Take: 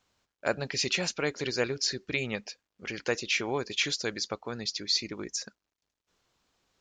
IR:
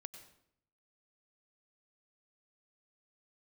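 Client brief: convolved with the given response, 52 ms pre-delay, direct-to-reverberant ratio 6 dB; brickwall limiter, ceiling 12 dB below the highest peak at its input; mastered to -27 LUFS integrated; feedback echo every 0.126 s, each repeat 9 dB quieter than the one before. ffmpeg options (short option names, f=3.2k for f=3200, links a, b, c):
-filter_complex "[0:a]alimiter=level_in=1dB:limit=-24dB:level=0:latency=1,volume=-1dB,aecho=1:1:126|252|378|504:0.355|0.124|0.0435|0.0152,asplit=2[a][b];[1:a]atrim=start_sample=2205,adelay=52[c];[b][c]afir=irnorm=-1:irlink=0,volume=-1dB[d];[a][d]amix=inputs=2:normalize=0,volume=7.5dB"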